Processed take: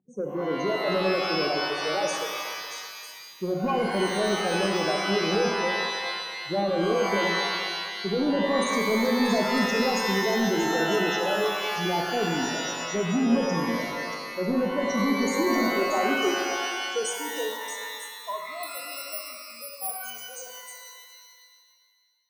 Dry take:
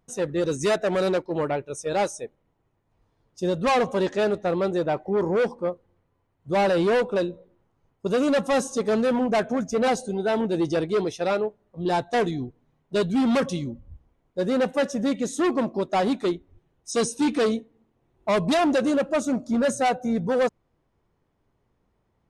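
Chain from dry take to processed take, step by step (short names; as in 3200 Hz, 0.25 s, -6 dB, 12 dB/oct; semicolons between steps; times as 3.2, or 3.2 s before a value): spectral gate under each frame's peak -10 dB strong; low-pass opened by the level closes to 1100 Hz, open at -20.5 dBFS; tilt shelf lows -5 dB, about 1100 Hz; in parallel at +2 dB: limiter -23.5 dBFS, peak gain reduction 9 dB; on the sum: high-pass sweep 210 Hz -> 1600 Hz, 15.3–18.71; soft clip -12.5 dBFS, distortion -18 dB; on a send: delay with a stepping band-pass 0.316 s, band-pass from 3700 Hz, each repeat 0.7 oct, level -2.5 dB; 18.63–20.03 on the sum: careless resampling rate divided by 4×, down filtered, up zero stuff; shimmer reverb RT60 1.9 s, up +12 st, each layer -2 dB, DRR 2 dB; gain -7.5 dB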